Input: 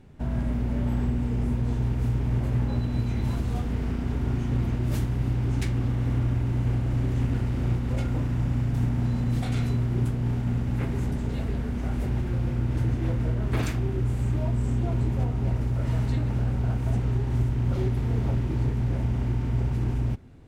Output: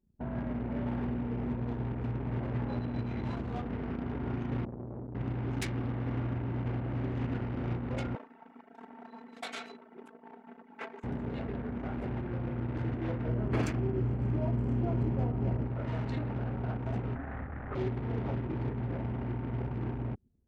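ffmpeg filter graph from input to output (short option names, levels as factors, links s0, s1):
-filter_complex "[0:a]asettb=1/sr,asplit=3[s0][s1][s2];[s0]atrim=end=4.654[s3];[s1]atrim=start=4.65:end=5.15,asetpts=PTS-STARTPTS,afade=t=in:d=0.004:c=qsin,afade=t=out:st=0.496:d=0.004:c=qsin,lowpass=1100,aeval=exprs='(tanh(31.6*val(0)+0.65)-tanh(0.65))/31.6':c=same[s4];[s2]atrim=start=5.146[s5];[s3][s4]acrossfade=d=0.004:c1=hsin:c2=qsin[s6];[s6][s5]acrossfade=d=0.004:c1=qsin:c2=hsin,asettb=1/sr,asplit=3[s7][s8][s9];[s7]atrim=end=8.154[s10];[s8]atrim=start=8.15:end=11.04,asetpts=PTS-STARTPTS,afade=t=in:d=0.004:c=qsin,afade=t=out:st=2.886:d=0.004:c=qsin,highpass=630,aecho=1:1:4.5:0.71,atrim=end_sample=127449[s11];[s9]atrim=start=11.036[s12];[s10][s11]acrossfade=d=0.004:c1=hsin:c2=qsin[s13];[s13][s12]acrossfade=d=0.004:c1=qsin:c2=hsin,asettb=1/sr,asplit=3[s14][s15][s16];[s14]atrim=end=13.284[s17];[s15]atrim=start=13.28:end=15.66,asetpts=PTS-STARTPTS,afade=t=in:d=0.004:c=qsin,afade=t=out:st=2.376:d=0.004:c=qsin,tiltshelf=f=660:g=4.5,bandreject=f=3700:w=8.5[s18];[s16]atrim=start=15.656[s19];[s17][s18]acrossfade=d=0.004:c1=hsin:c2=qsin[s20];[s20][s19]acrossfade=d=0.004:c1=qsin:c2=hsin,asettb=1/sr,asplit=3[s21][s22][s23];[s21]atrim=end=17.154[s24];[s22]atrim=start=17.15:end=17.75,asetpts=PTS-STARTPTS,afade=t=in:d=0.004:c=qsin,afade=t=out:st=0.596:d=0.004:c=qsin,lowpass=f=1900:t=q:w=2.4,afreqshift=-130[s25];[s23]atrim=start=17.746[s26];[s24][s25]acrossfade=d=0.004:c1=hsin:c2=qsin[s27];[s27][s26]acrossfade=d=0.004:c1=qsin:c2=hsin,anlmdn=1.58,highpass=f=320:p=1"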